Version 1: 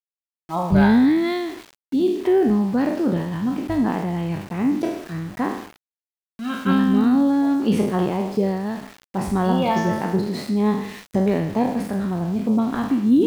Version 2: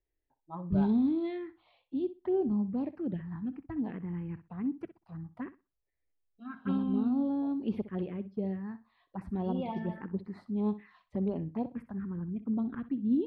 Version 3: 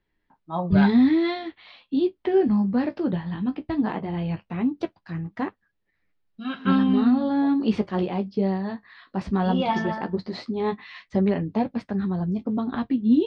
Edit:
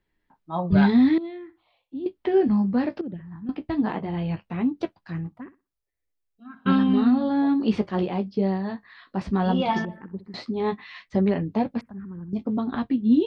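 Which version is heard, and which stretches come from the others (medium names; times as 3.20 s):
3
1.18–2.06 s: from 2
3.01–3.49 s: from 2
5.32–6.66 s: from 2
9.85–10.34 s: from 2
11.81–12.33 s: from 2
not used: 1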